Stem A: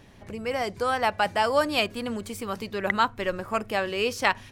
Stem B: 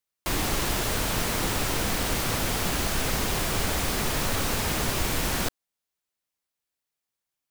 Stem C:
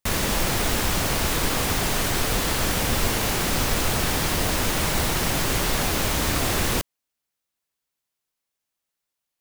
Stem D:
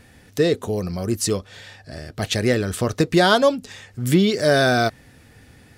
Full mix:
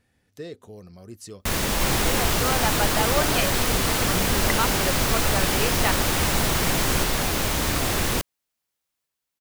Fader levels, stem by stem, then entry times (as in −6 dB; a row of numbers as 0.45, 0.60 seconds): −3.0, −0.5, −0.5, −18.5 decibels; 1.60, 1.55, 1.40, 0.00 seconds